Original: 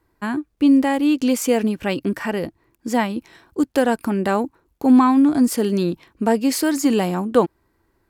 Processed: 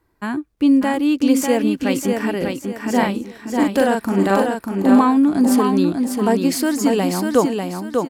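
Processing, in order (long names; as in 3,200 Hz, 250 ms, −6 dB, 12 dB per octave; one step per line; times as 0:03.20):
0:02.37–0:04.92: double-tracking delay 41 ms −2.5 dB
repeating echo 595 ms, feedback 30%, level −4.5 dB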